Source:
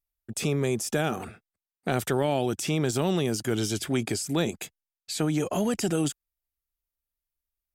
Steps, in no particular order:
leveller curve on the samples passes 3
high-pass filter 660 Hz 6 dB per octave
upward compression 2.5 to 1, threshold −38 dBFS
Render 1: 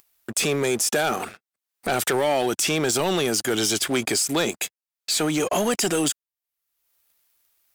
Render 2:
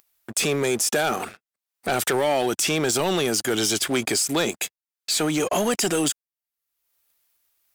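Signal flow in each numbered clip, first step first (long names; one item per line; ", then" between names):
high-pass filter, then upward compression, then leveller curve on the samples
upward compression, then high-pass filter, then leveller curve on the samples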